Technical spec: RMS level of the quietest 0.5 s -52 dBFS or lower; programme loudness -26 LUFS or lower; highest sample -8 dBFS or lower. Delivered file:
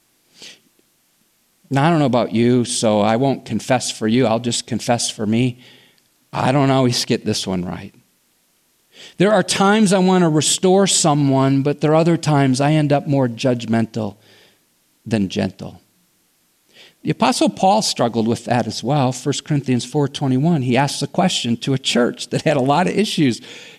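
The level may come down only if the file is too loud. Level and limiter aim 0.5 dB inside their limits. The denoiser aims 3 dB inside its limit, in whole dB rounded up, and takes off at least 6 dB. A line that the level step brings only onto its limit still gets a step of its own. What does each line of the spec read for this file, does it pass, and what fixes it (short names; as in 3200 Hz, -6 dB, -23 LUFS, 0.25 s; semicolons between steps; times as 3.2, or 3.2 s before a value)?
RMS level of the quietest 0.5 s -61 dBFS: OK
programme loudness -17.5 LUFS: fail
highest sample -5.0 dBFS: fail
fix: gain -9 dB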